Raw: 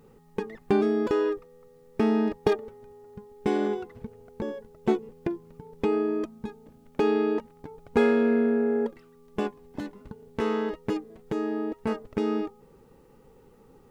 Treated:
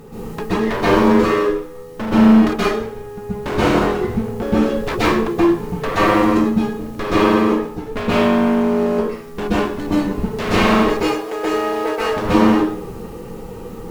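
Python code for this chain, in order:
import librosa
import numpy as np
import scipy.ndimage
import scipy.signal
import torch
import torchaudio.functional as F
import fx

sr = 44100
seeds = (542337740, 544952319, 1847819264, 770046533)

y = fx.law_mismatch(x, sr, coded='mu')
y = fx.highpass(y, sr, hz=470.0, slope=24, at=(10.87, 12.07), fade=0.02)
y = fx.rider(y, sr, range_db=5, speed_s=2.0)
y = fx.fold_sine(y, sr, drive_db=16, ceiling_db=-6.5)
y = fx.rev_plate(y, sr, seeds[0], rt60_s=0.57, hf_ratio=0.9, predelay_ms=115, drr_db=-9.5)
y = y * librosa.db_to_amplitude(-14.0)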